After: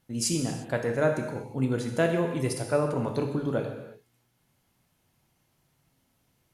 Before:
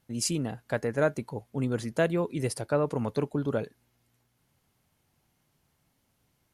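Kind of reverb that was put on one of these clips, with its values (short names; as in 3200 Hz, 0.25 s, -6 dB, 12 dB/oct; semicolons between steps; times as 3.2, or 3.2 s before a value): non-linear reverb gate 0.38 s falling, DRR 3 dB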